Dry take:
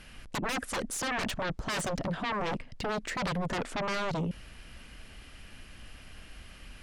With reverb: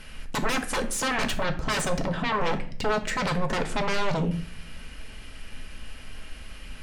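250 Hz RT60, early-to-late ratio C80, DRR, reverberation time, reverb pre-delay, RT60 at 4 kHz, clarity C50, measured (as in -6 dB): 0.85 s, 17.0 dB, 5.5 dB, 0.50 s, 4 ms, 0.35 s, 12.5 dB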